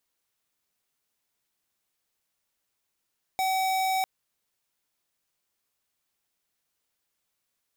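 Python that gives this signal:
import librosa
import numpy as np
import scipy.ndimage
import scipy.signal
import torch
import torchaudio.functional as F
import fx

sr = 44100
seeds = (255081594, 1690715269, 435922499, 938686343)

y = fx.tone(sr, length_s=0.65, wave='square', hz=759.0, level_db=-26.0)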